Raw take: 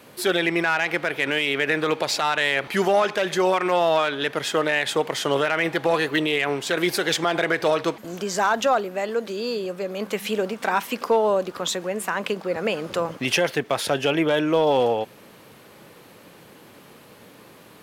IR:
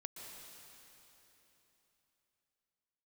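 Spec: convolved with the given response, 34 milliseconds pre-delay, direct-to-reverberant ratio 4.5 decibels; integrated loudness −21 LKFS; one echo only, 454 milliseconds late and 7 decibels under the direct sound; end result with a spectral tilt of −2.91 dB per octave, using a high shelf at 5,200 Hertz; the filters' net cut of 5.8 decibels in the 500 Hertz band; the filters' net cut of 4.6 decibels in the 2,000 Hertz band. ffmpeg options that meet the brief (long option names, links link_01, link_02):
-filter_complex "[0:a]equalizer=frequency=500:width_type=o:gain=-7,equalizer=frequency=2000:width_type=o:gain=-6.5,highshelf=frequency=5200:gain=6,aecho=1:1:454:0.447,asplit=2[link_01][link_02];[1:a]atrim=start_sample=2205,adelay=34[link_03];[link_02][link_03]afir=irnorm=-1:irlink=0,volume=-1dB[link_04];[link_01][link_04]amix=inputs=2:normalize=0,volume=3dB"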